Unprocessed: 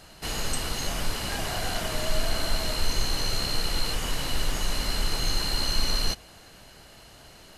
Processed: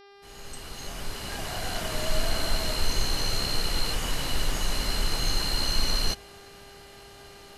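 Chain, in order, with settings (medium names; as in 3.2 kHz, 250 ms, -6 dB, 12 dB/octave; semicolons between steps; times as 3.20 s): fade-in on the opening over 2.17 s; mains buzz 400 Hz, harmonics 14, -52 dBFS -5 dB/octave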